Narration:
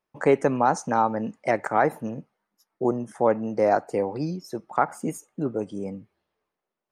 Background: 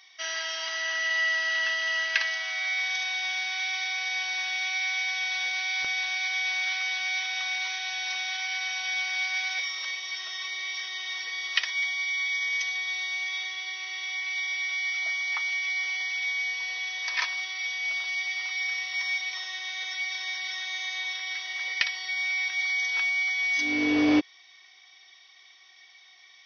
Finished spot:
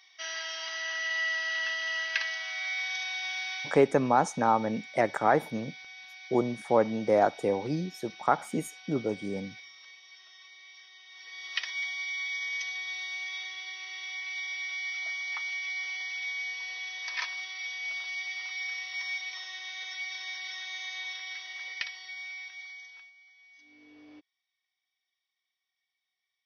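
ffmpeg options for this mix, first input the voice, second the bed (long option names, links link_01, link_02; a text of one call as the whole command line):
ffmpeg -i stem1.wav -i stem2.wav -filter_complex "[0:a]adelay=3500,volume=-2.5dB[link_01];[1:a]volume=8.5dB,afade=type=out:start_time=3.53:duration=0.31:silence=0.199526,afade=type=in:start_time=11.11:duration=0.56:silence=0.223872,afade=type=out:start_time=21.12:duration=2.01:silence=0.0501187[link_02];[link_01][link_02]amix=inputs=2:normalize=0" out.wav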